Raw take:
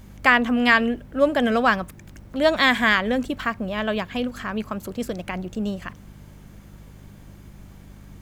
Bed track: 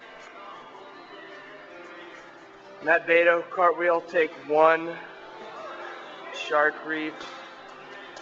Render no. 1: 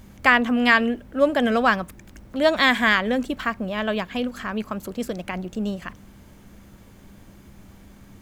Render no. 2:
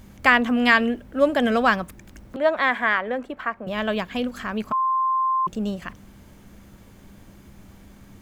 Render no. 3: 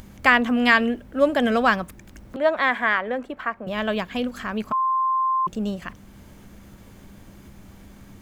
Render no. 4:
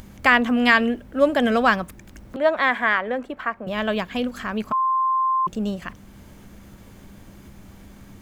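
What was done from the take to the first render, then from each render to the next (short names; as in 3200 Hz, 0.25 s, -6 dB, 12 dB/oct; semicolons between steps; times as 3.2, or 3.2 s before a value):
de-hum 50 Hz, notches 3
2.36–3.67 three-band isolator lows -13 dB, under 380 Hz, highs -17 dB, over 2200 Hz; 4.72–5.47 bleep 1050 Hz -18.5 dBFS
upward compressor, threshold -40 dBFS
gain +1 dB; limiter -3 dBFS, peak gain reduction 1.5 dB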